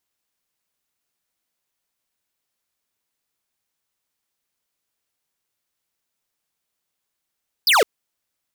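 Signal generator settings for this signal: laser zap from 5300 Hz, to 380 Hz, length 0.16 s square, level -14.5 dB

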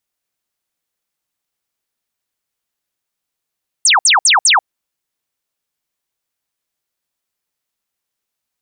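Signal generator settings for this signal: burst of laser zaps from 9500 Hz, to 700 Hz, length 0.14 s sine, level -7 dB, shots 4, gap 0.06 s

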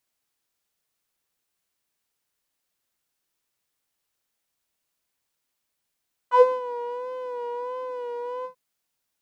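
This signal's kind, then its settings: synth patch with vibrato B5, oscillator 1 triangle, detune 2 cents, oscillator 2 level -8 dB, sub -8 dB, noise -21.5 dB, filter bandpass, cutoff 120 Hz, Q 3.5, filter envelope 3.5 oct, filter decay 0.14 s, attack 88 ms, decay 0.20 s, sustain -12.5 dB, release 0.10 s, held 2.14 s, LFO 1.5 Hz, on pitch 54 cents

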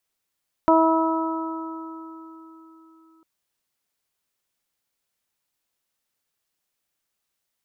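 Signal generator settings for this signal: additive tone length 2.55 s, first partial 324 Hz, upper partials 0/0.5/-6 dB, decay 4.00 s, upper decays 2.19/2.94/3.97 s, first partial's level -17 dB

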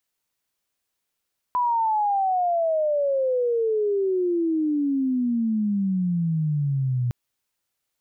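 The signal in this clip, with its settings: chirp logarithmic 1000 Hz -> 120 Hz -19 dBFS -> -20.5 dBFS 5.56 s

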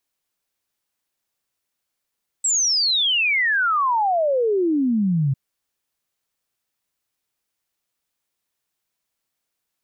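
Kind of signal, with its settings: log sweep 7900 Hz -> 130 Hz 2.90 s -16.5 dBFS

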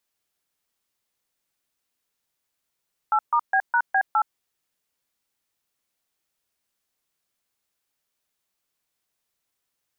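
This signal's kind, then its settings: DTMF "8*B#B8", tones 69 ms, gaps 0.137 s, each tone -19.5 dBFS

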